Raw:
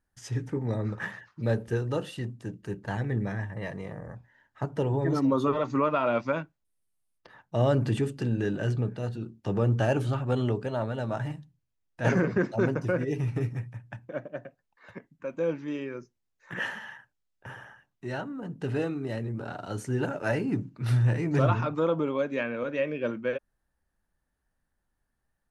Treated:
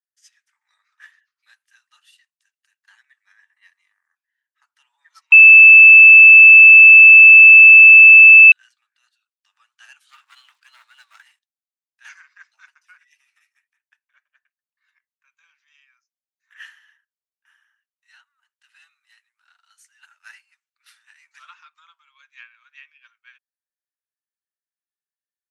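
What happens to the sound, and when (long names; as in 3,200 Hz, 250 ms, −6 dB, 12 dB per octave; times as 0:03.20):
0:05.32–0:08.52: beep over 2,630 Hz −8 dBFS
0:10.09–0:11.39: leveller curve on the samples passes 2
whole clip: Bessel high-pass filter 2,200 Hz, order 8; expander for the loud parts 1.5 to 1, over −53 dBFS; level +8.5 dB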